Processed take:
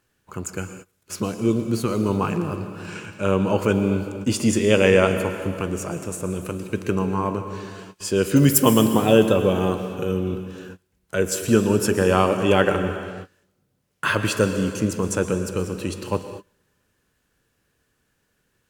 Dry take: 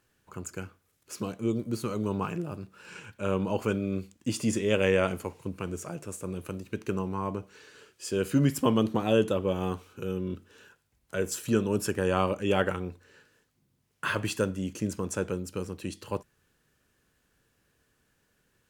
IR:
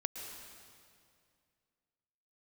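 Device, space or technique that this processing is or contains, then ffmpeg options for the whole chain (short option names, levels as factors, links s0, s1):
keyed gated reverb: -filter_complex "[0:a]asettb=1/sr,asplit=3[s0][s1][s2];[s0]atrim=end=8.364[s3];[s1]atrim=start=8.36:end=8.86,asetpts=PTS-STARTPTS,afade=t=in:d=0.004:c=qsin,afade=t=out:st=0.496:d=0.004:c=qsin,aemphasis=mode=production:type=50fm[s4];[s2]atrim=start=8.856[s5];[s3][s4]acrossfade=d=0.004:c1=hsin:c2=qsin[s6];[s6][s5]acrossfade=d=0.004:c1=qsin:c2=hsin,asplit=3[s7][s8][s9];[1:a]atrim=start_sample=2205[s10];[s8][s10]afir=irnorm=-1:irlink=0[s11];[s9]apad=whole_len=824562[s12];[s11][s12]sidechaingate=range=0.0316:threshold=0.00141:ratio=16:detection=peak,volume=1.41[s13];[s7][s13]amix=inputs=2:normalize=0,volume=1.12"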